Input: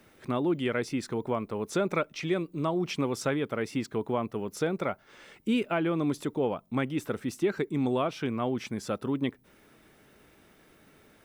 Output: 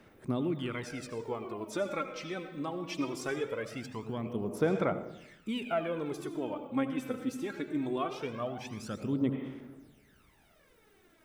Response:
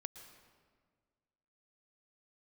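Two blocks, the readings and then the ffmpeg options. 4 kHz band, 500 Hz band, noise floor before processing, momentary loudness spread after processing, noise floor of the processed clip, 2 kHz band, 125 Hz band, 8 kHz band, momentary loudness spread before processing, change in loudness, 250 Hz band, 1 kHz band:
−4.5 dB, −4.5 dB, −60 dBFS, 8 LU, −64 dBFS, −4.5 dB, −5.0 dB, −5.5 dB, 5 LU, −4.5 dB, −4.5 dB, −4.5 dB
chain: -filter_complex "[1:a]atrim=start_sample=2205,asetrate=66150,aresample=44100[link_01];[0:a][link_01]afir=irnorm=-1:irlink=0,aphaser=in_gain=1:out_gain=1:delay=3.9:decay=0.65:speed=0.21:type=sinusoidal"

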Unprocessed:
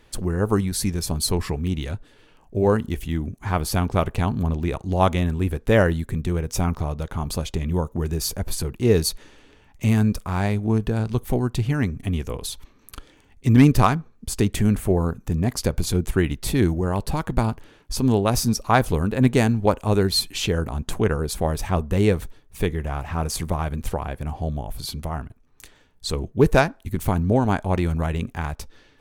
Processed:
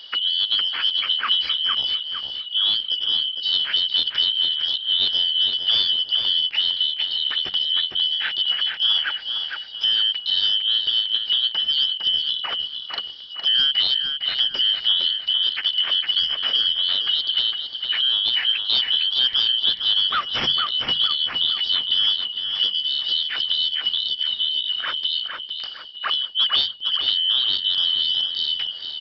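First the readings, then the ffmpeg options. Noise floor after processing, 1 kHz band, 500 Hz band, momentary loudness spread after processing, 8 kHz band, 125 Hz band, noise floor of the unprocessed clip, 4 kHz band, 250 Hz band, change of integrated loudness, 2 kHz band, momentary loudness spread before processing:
−36 dBFS, −8.0 dB, below −20 dB, 6 LU, below −25 dB, below −30 dB, −55 dBFS, +19.5 dB, below −25 dB, +4.0 dB, +0.5 dB, 10 LU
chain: -filter_complex "[0:a]afftfilt=real='real(if(lt(b,272),68*(eq(floor(b/68),0)*2+eq(floor(b/68),1)*3+eq(floor(b/68),2)*0+eq(floor(b/68),3)*1)+mod(b,68),b),0)':imag='imag(if(lt(b,272),68*(eq(floor(b/68),0)*2+eq(floor(b/68),1)*3+eq(floor(b/68),2)*0+eq(floor(b/68),3)*1)+mod(b,68),b),0)':win_size=2048:overlap=0.75,aresample=11025,asoftclip=type=tanh:threshold=-12.5dB,aresample=44100,tiltshelf=frequency=830:gain=-10,bandreject=frequency=50:width_type=h:width=6,bandreject=frequency=100:width_type=h:width=6,bandreject=frequency=150:width_type=h:width=6,bandreject=frequency=200:width_type=h:width=6,acrossover=split=350[link_01][link_02];[link_02]acompressor=threshold=-36dB:ratio=2[link_03];[link_01][link_03]amix=inputs=2:normalize=0,highshelf=frequency=4100:gain=-8,asplit=2[link_04][link_05];[link_05]adelay=457,lowpass=frequency=3100:poles=1,volume=-4dB,asplit=2[link_06][link_07];[link_07]adelay=457,lowpass=frequency=3100:poles=1,volume=0.43,asplit=2[link_08][link_09];[link_09]adelay=457,lowpass=frequency=3100:poles=1,volume=0.43,asplit=2[link_10][link_11];[link_11]adelay=457,lowpass=frequency=3100:poles=1,volume=0.43,asplit=2[link_12][link_13];[link_13]adelay=457,lowpass=frequency=3100:poles=1,volume=0.43[link_14];[link_06][link_08][link_10][link_12][link_14]amix=inputs=5:normalize=0[link_15];[link_04][link_15]amix=inputs=2:normalize=0,volume=8.5dB"

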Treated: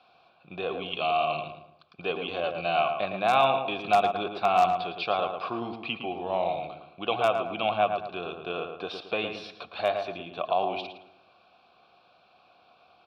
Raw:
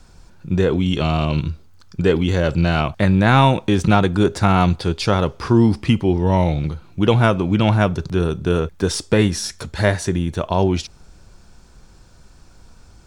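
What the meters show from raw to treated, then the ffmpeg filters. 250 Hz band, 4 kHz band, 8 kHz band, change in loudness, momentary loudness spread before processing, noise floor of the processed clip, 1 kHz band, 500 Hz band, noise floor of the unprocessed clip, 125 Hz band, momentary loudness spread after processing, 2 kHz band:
−21.0 dB, −7.0 dB, below −20 dB, −10.0 dB, 8 LU, −62 dBFS, −3.0 dB, −7.5 dB, −48 dBFS, −28.0 dB, 12 LU, −8.0 dB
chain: -filter_complex "[0:a]equalizer=frequency=3800:width=0.56:gain=5,asplit=2[link_01][link_02];[link_02]acompressor=threshold=-28dB:ratio=10,volume=-2.5dB[link_03];[link_01][link_03]amix=inputs=2:normalize=0,asplit=3[link_04][link_05][link_06];[link_04]bandpass=frequency=730:width_type=q:width=8,volume=0dB[link_07];[link_05]bandpass=frequency=1090:width_type=q:width=8,volume=-6dB[link_08];[link_06]bandpass=frequency=2440:width_type=q:width=8,volume=-9dB[link_09];[link_07][link_08][link_09]amix=inputs=3:normalize=0,highshelf=frequency=5300:width_type=q:width=3:gain=-11.5,aeval=exprs='0.251*(abs(mod(val(0)/0.251+3,4)-2)-1)':channel_layout=same,highpass=97,asplit=2[link_10][link_11];[link_11]adelay=111,lowpass=frequency=2100:poles=1,volume=-5.5dB,asplit=2[link_12][link_13];[link_13]adelay=111,lowpass=frequency=2100:poles=1,volume=0.41,asplit=2[link_14][link_15];[link_15]adelay=111,lowpass=frequency=2100:poles=1,volume=0.41,asplit=2[link_16][link_17];[link_17]adelay=111,lowpass=frequency=2100:poles=1,volume=0.41,asplit=2[link_18][link_19];[link_19]adelay=111,lowpass=frequency=2100:poles=1,volume=0.41[link_20];[link_12][link_14][link_16][link_18][link_20]amix=inputs=5:normalize=0[link_21];[link_10][link_21]amix=inputs=2:normalize=0"

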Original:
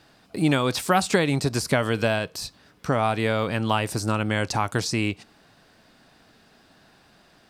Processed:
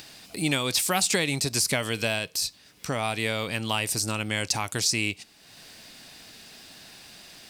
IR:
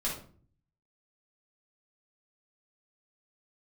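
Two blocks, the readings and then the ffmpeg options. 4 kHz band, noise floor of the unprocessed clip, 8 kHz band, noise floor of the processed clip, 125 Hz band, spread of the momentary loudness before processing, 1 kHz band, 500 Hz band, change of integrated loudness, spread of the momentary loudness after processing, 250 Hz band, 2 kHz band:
+3.5 dB, −58 dBFS, +7.0 dB, −56 dBFS, −6.5 dB, 10 LU, −6.5 dB, −6.5 dB, −2.0 dB, 22 LU, −6.5 dB, −1.0 dB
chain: -af "aexciter=amount=2.7:drive=7:freq=2000,acompressor=mode=upward:threshold=-31dB:ratio=2.5,volume=-6.5dB"

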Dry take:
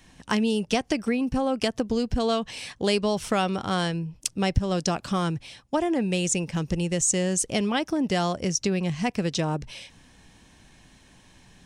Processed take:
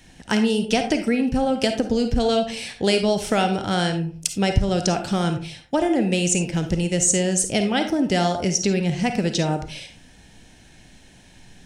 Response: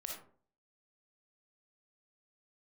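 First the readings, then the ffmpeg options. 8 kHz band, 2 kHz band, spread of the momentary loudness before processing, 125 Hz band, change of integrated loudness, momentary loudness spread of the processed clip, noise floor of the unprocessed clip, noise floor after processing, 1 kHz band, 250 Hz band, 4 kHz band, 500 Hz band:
+4.5 dB, +4.5 dB, 5 LU, +4.0 dB, +4.5 dB, 5 LU, −56 dBFS, −50 dBFS, +3.5 dB, +4.5 dB, +4.5 dB, +4.5 dB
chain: -filter_complex "[0:a]equalizer=frequency=1100:width=6.3:gain=-13,asplit=2[link_01][link_02];[1:a]atrim=start_sample=2205,asetrate=48510,aresample=44100[link_03];[link_02][link_03]afir=irnorm=-1:irlink=0,volume=3.5dB[link_04];[link_01][link_04]amix=inputs=2:normalize=0,volume=-1dB"

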